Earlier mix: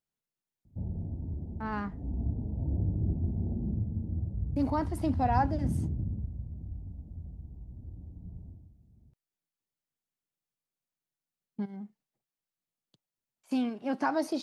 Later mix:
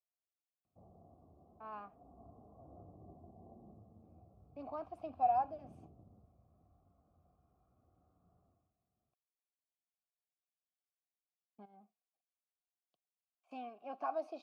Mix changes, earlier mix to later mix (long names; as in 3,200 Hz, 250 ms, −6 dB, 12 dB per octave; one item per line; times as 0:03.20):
background: remove Chebyshev low-pass with heavy ripple 930 Hz, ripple 3 dB
master: add formant filter a